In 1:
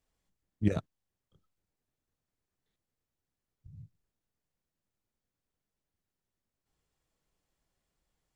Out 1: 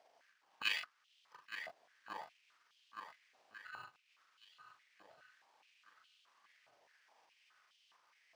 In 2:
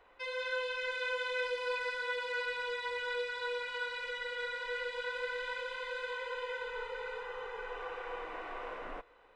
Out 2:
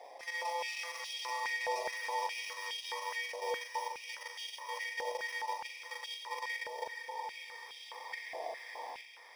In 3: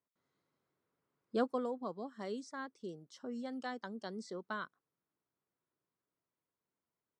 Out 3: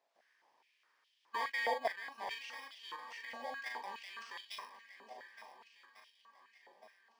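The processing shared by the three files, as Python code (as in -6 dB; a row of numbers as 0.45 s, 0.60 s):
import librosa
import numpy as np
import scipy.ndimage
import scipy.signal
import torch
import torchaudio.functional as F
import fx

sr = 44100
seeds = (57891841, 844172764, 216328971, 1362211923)

y = fx.bit_reversed(x, sr, seeds[0], block=32)
y = fx.level_steps(y, sr, step_db=13)
y = fx.power_curve(y, sr, exponent=0.7)
y = fx.air_absorb(y, sr, metres=140.0)
y = fx.doubler(y, sr, ms=41.0, db=-6)
y = fx.echo_swing(y, sr, ms=1447, ratio=1.5, feedback_pct=37, wet_db=-12.0)
y = fx.filter_held_highpass(y, sr, hz=4.8, low_hz=690.0, high_hz=3100.0)
y = F.gain(torch.from_numpy(y), 4.0).numpy()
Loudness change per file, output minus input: -11.5 LU, -1.5 LU, -0.5 LU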